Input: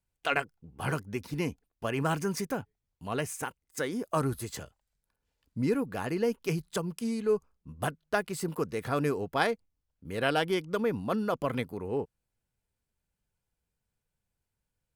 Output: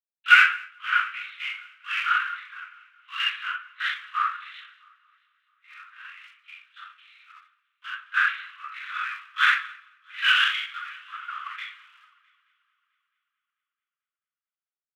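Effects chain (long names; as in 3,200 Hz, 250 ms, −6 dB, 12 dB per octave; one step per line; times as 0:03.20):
leveller curve on the samples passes 1
rectangular room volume 43 cubic metres, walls mixed, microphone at 2.2 metres
linear-prediction vocoder at 8 kHz whisper
in parallel at −9 dB: hard clipping −20.5 dBFS, distortion −3 dB
on the sum: harmonic and percussive parts rebalanced percussive −13 dB
automatic gain control gain up to 6.5 dB
Butterworth high-pass 1,200 Hz 72 dB per octave
on a send: echo machine with several playback heads 220 ms, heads first and third, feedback 65%, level −17.5 dB
on the sum: multiband upward and downward expander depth 100%
level −3 dB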